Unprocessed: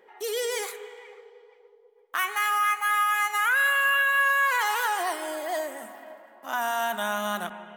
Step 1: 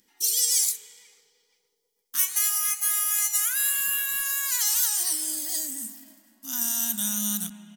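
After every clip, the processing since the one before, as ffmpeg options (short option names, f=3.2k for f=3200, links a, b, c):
-af "firequalizer=gain_entry='entry(280,0);entry(400,-29);entry(5200,11)':delay=0.05:min_phase=1,volume=4.5dB"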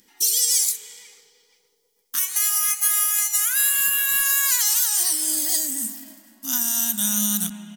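-af "alimiter=limit=-15.5dB:level=0:latency=1:release=286,volume=8dB"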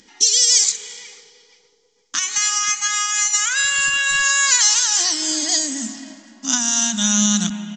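-af "aresample=16000,aresample=44100,volume=9dB"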